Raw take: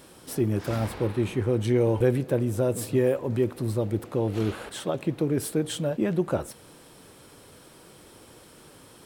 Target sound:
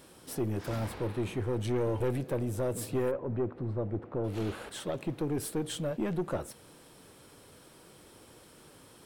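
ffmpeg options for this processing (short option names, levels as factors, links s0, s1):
-filter_complex "[0:a]aeval=exprs='(tanh(10*val(0)+0.25)-tanh(0.25))/10':c=same,asplit=3[s0][s1][s2];[s0]afade=t=out:st=3.1:d=0.02[s3];[s1]lowpass=1500,afade=t=in:st=3.1:d=0.02,afade=t=out:st=4.23:d=0.02[s4];[s2]afade=t=in:st=4.23:d=0.02[s5];[s3][s4][s5]amix=inputs=3:normalize=0,volume=0.631"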